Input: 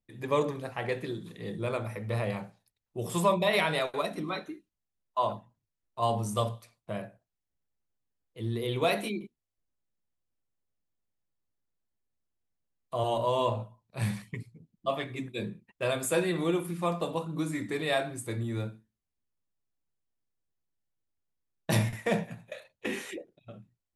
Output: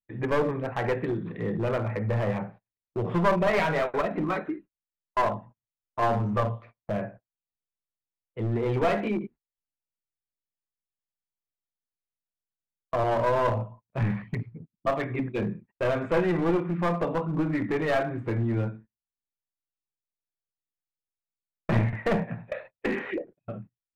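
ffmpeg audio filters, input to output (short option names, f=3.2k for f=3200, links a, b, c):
-filter_complex "[0:a]agate=range=-25dB:threshold=-53dB:ratio=16:detection=peak,lowpass=f=2.1k:w=0.5412,lowpass=f=2.1k:w=1.3066,asplit=2[a][b];[b]acompressor=threshold=-37dB:ratio=12,volume=1.5dB[c];[a][c]amix=inputs=2:normalize=0,aeval=exprs='clip(val(0),-1,0.0422)':c=same,volume=3.5dB"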